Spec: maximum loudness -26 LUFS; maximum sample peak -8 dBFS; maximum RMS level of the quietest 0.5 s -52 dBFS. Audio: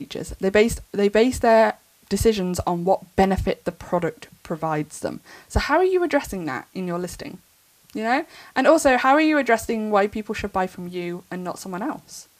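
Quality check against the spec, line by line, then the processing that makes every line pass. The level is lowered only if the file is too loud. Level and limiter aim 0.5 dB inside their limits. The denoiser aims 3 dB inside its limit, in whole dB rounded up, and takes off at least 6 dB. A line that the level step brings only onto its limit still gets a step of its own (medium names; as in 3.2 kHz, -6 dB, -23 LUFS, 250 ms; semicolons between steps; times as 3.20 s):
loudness -22.0 LUFS: fail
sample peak -3.0 dBFS: fail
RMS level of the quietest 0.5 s -57 dBFS: pass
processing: trim -4.5 dB; peak limiter -8.5 dBFS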